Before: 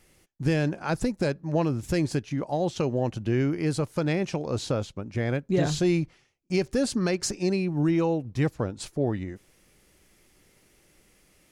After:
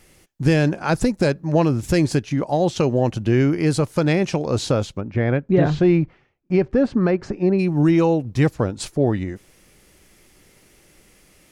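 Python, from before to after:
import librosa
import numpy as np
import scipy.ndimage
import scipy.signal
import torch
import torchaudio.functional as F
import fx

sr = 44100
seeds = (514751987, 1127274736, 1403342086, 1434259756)

y = fx.lowpass(x, sr, hz=fx.line((5.0, 2500.0), (7.58, 1400.0)), slope=12, at=(5.0, 7.58), fade=0.02)
y = y * 10.0 ** (7.5 / 20.0)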